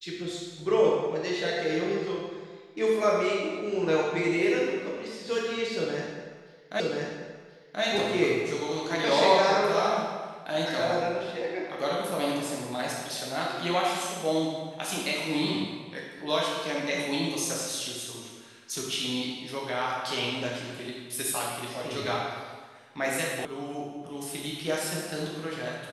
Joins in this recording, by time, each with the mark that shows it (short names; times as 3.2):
6.8 repeat of the last 1.03 s
23.45 sound cut off